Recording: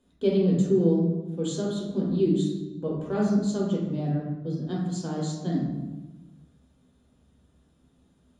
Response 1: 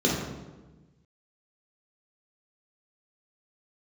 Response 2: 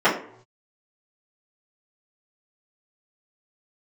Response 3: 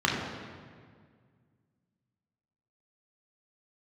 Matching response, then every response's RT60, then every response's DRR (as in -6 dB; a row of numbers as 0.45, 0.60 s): 1; 1.2 s, not exponential, 1.9 s; -4.0, -12.5, -3.0 dB